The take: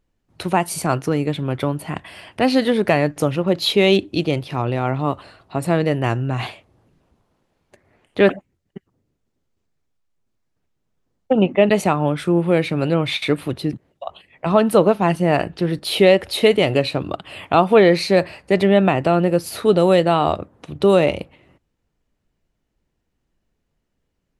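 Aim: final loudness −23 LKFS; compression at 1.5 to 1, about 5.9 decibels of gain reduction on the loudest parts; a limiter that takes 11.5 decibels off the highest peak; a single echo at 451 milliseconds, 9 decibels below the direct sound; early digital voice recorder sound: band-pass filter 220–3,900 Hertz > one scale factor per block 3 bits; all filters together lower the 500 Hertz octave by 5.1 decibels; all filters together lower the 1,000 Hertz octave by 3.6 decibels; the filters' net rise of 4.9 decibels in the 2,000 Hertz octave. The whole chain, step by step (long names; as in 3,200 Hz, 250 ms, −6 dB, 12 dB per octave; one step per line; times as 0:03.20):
parametric band 500 Hz −5.5 dB
parametric band 1,000 Hz −4.5 dB
parametric band 2,000 Hz +7.5 dB
downward compressor 1.5 to 1, threshold −27 dBFS
brickwall limiter −17.5 dBFS
band-pass filter 220–3,900 Hz
single-tap delay 451 ms −9 dB
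one scale factor per block 3 bits
level +7 dB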